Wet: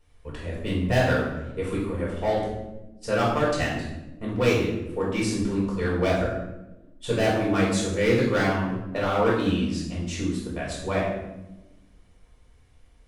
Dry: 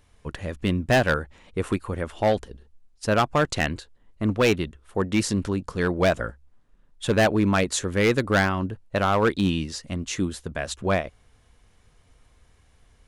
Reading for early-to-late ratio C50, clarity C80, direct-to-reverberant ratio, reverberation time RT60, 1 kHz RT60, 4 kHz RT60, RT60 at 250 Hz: 2.5 dB, 5.0 dB, -6.0 dB, 1.0 s, 0.85 s, 0.65 s, 1.8 s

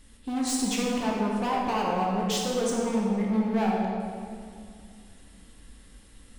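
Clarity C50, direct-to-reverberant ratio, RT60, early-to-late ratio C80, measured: -0.5 dB, -3.0 dB, 2.3 s, 1.5 dB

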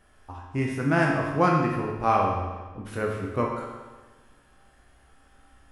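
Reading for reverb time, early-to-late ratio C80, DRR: 1.3 s, 4.0 dB, -2.0 dB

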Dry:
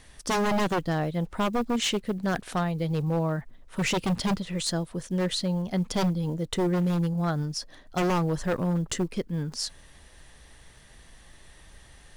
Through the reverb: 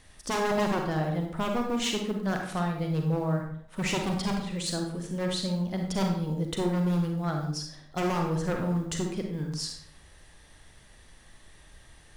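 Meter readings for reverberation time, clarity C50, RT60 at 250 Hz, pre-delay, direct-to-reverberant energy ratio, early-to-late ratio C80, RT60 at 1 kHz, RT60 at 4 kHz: 0.65 s, 4.0 dB, 0.65 s, 36 ms, 2.0 dB, 7.5 dB, 0.60 s, 0.45 s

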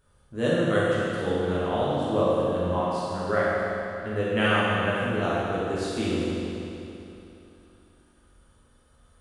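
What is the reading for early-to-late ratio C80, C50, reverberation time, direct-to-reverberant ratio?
-2.5 dB, -4.5 dB, 3.0 s, -9.0 dB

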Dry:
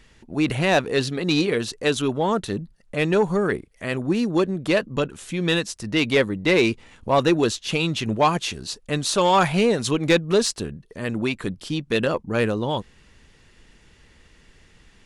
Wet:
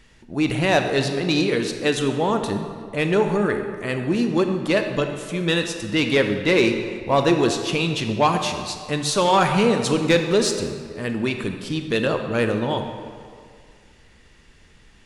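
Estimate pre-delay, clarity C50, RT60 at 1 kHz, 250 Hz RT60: 23 ms, 6.5 dB, 2.2 s, 1.9 s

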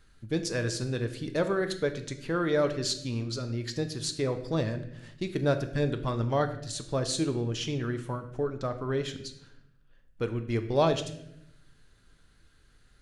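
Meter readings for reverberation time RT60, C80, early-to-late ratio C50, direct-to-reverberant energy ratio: 0.80 s, 13.5 dB, 11.5 dB, 7.5 dB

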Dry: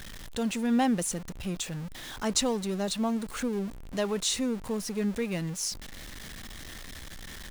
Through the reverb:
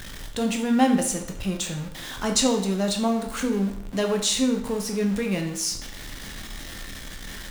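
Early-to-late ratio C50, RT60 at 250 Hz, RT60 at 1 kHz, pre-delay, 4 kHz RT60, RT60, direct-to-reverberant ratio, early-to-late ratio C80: 8.0 dB, 0.60 s, 0.65 s, 11 ms, 0.60 s, 0.65 s, 3.0 dB, 11.5 dB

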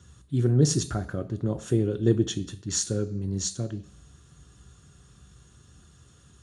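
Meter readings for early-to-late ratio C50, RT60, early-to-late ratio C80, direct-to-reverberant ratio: 16.5 dB, 0.55 s, 19.5 dB, 8.0 dB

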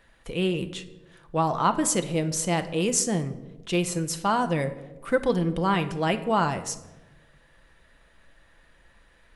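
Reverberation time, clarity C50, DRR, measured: 1.1 s, 13.0 dB, 8.0 dB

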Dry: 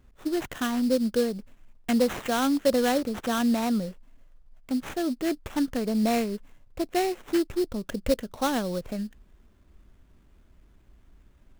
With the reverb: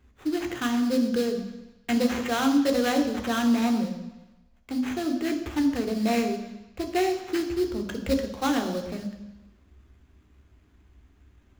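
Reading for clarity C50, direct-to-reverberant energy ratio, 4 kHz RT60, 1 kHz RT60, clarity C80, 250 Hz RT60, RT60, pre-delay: 8.5 dB, 4.0 dB, 1.0 s, 1.1 s, 11.0 dB, 0.95 s, 1.0 s, 3 ms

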